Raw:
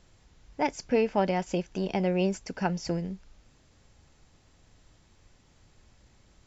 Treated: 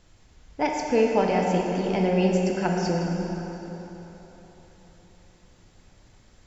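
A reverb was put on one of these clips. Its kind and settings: plate-style reverb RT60 4 s, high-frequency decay 0.7×, DRR -0.5 dB; gain +1.5 dB

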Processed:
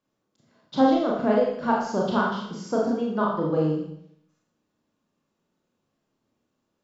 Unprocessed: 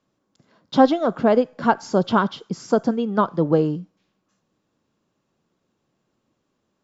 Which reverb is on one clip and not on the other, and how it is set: Schroeder reverb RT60 0.71 s, combs from 26 ms, DRR -3.5 dB; gain -9 dB

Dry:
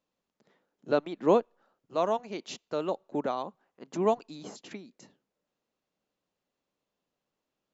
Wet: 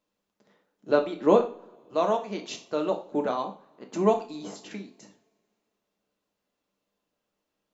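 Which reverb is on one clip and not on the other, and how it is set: two-slope reverb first 0.37 s, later 2.3 s, from -28 dB, DRR 2.5 dB; gain +1.5 dB

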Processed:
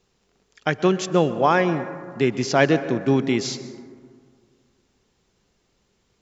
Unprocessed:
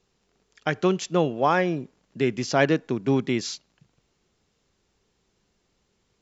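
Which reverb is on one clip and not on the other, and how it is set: plate-style reverb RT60 2 s, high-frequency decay 0.3×, pre-delay 0.11 s, DRR 12.5 dB; gain +3 dB

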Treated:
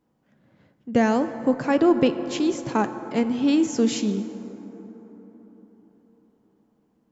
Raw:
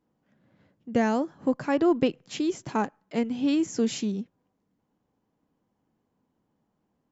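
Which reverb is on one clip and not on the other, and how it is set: plate-style reverb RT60 4.5 s, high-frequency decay 0.35×, DRR 10 dB; gain +4 dB

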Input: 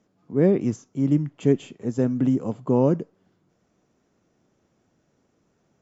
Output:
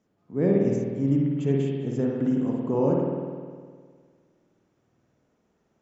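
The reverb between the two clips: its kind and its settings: spring tank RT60 1.8 s, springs 51 ms, chirp 25 ms, DRR -2 dB; gain -6 dB

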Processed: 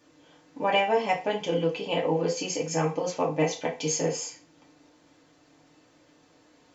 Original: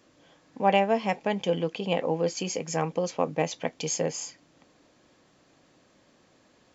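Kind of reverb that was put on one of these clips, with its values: FDN reverb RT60 0.34 s, low-frequency decay 0.75×, high-frequency decay 0.9×, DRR -3.5 dB; gain -3.5 dB

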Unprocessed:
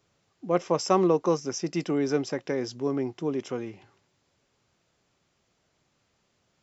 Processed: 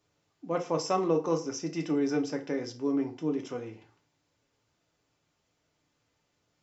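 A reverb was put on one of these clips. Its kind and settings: FDN reverb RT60 0.39 s, low-frequency decay 0.95×, high-frequency decay 0.8×, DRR 3 dB; gain -6 dB

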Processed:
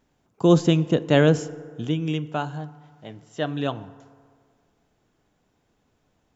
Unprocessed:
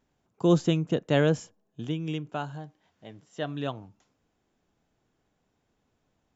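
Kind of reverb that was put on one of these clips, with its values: FDN reverb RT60 2 s, low-frequency decay 0.85×, high-frequency decay 0.45×, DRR 15.5 dB; gain +5.5 dB

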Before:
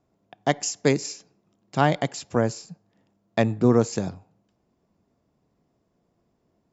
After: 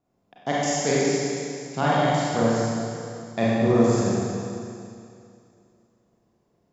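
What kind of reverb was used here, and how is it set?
Schroeder reverb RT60 2.5 s, combs from 31 ms, DRR -8 dB; gain -6.5 dB

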